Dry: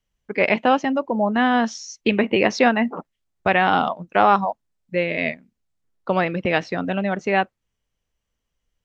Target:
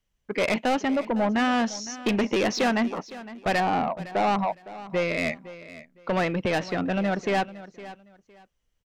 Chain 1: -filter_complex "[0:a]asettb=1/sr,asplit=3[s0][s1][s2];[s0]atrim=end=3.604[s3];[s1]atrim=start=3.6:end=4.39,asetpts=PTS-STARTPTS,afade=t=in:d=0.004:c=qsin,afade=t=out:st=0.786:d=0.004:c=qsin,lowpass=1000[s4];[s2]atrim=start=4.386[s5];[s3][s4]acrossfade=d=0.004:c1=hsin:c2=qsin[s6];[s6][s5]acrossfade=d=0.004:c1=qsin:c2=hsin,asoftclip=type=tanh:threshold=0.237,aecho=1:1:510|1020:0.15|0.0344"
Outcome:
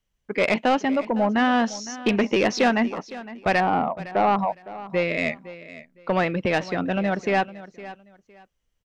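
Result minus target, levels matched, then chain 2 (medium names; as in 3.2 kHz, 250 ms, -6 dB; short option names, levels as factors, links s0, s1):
saturation: distortion -6 dB
-filter_complex "[0:a]asettb=1/sr,asplit=3[s0][s1][s2];[s0]atrim=end=3.604[s3];[s1]atrim=start=3.6:end=4.39,asetpts=PTS-STARTPTS,afade=t=in:d=0.004:c=qsin,afade=t=out:st=0.786:d=0.004:c=qsin,lowpass=1000[s4];[s2]atrim=start=4.386[s5];[s3][s4]acrossfade=d=0.004:c1=hsin:c2=qsin[s6];[s6][s5]acrossfade=d=0.004:c1=qsin:c2=hsin,asoftclip=type=tanh:threshold=0.112,aecho=1:1:510|1020:0.15|0.0344"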